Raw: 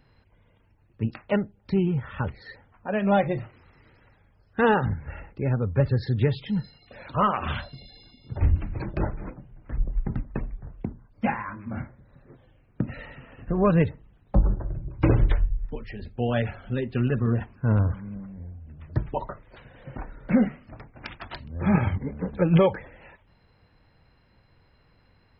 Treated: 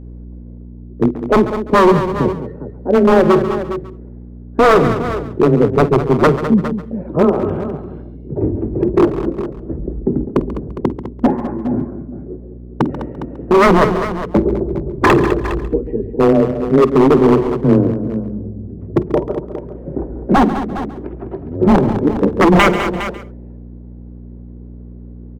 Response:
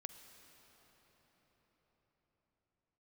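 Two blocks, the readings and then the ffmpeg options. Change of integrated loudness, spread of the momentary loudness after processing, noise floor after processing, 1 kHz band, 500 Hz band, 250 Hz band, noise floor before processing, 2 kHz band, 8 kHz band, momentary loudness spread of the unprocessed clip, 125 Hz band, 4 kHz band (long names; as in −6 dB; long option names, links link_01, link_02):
+11.0 dB, 16 LU, −34 dBFS, +13.5 dB, +15.0 dB, +13.0 dB, −62 dBFS, +12.0 dB, can't be measured, 19 LU, +5.0 dB, +13.0 dB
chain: -filter_complex "[0:a]lowshelf=frequency=180:gain=-10,afreqshift=16,acrossover=split=160[link_01][link_02];[link_01]acompressor=threshold=-41dB:ratio=6[link_03];[link_02]lowpass=frequency=380:width_type=q:width=3.7[link_04];[link_03][link_04]amix=inputs=2:normalize=0,aeval=exprs='val(0)+0.00398*(sin(2*PI*60*n/s)+sin(2*PI*2*60*n/s)/2+sin(2*PI*3*60*n/s)/3+sin(2*PI*4*60*n/s)/4+sin(2*PI*5*60*n/s)/5)':channel_layout=same,aeval=exprs='0.1*(abs(mod(val(0)/0.1+3,4)-2)-1)':channel_layout=same,aecho=1:1:49|204|409:0.133|0.282|0.237,asplit=2[link_05][link_06];[1:a]atrim=start_sample=2205,atrim=end_sample=3969,adelay=138[link_07];[link_06][link_07]afir=irnorm=-1:irlink=0,volume=-8.5dB[link_08];[link_05][link_08]amix=inputs=2:normalize=0,alimiter=level_in=17dB:limit=-1dB:release=50:level=0:latency=1,volume=-1dB"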